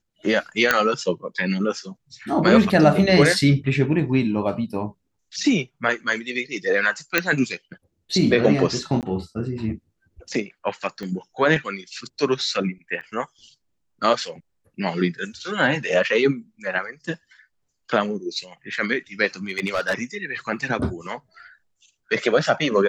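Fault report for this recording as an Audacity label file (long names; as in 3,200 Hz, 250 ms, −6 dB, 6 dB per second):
0.710000	0.710000	click −2 dBFS
7.180000	7.180000	click −2 dBFS
9.010000	9.030000	drop-out 18 ms
11.030000	11.030000	click −20 dBFS
13.010000	13.020000	drop-out 6 ms
19.490000	19.940000	clipping −17.5 dBFS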